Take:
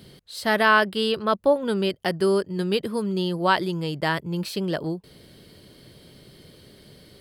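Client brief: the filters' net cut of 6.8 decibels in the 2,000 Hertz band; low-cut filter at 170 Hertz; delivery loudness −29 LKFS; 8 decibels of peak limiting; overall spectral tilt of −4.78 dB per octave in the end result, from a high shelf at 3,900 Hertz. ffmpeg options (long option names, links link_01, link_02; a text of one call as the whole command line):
ffmpeg -i in.wav -af "highpass=170,equalizer=frequency=2000:width_type=o:gain=-8.5,highshelf=frequency=3900:gain=-6,volume=-1dB,alimiter=limit=-17.5dB:level=0:latency=1" out.wav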